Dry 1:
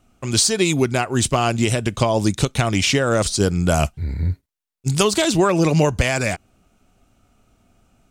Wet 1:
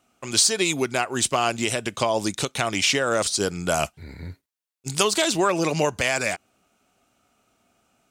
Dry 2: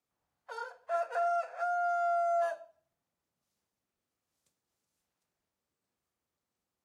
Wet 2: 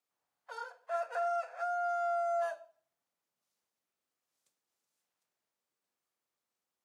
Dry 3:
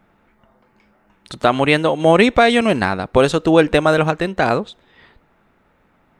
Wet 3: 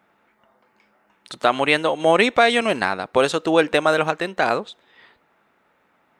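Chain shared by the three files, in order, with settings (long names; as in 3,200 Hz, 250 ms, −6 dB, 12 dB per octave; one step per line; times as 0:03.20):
high-pass filter 510 Hz 6 dB per octave
level −1 dB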